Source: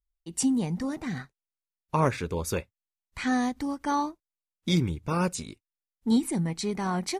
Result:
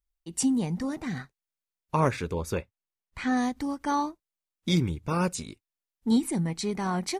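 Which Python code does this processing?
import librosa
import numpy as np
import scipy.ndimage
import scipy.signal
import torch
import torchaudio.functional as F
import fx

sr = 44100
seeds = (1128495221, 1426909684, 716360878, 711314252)

y = fx.high_shelf(x, sr, hz=3900.0, db=-8.0, at=(2.33, 3.37))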